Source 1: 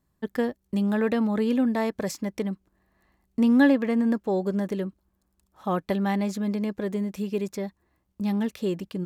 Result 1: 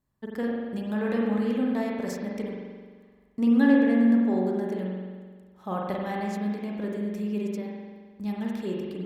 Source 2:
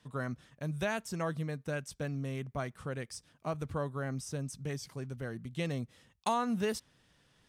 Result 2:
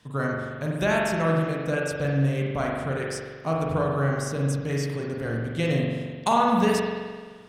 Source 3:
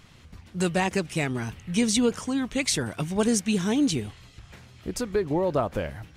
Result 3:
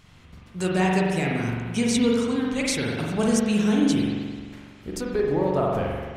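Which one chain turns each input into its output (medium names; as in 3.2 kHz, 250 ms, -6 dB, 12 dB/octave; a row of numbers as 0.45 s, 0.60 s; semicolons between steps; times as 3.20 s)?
spring tank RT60 1.6 s, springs 43 ms, chirp 65 ms, DRR -2.5 dB; peak normalisation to -9 dBFS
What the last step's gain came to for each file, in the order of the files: -7.0 dB, +7.5 dB, -2.5 dB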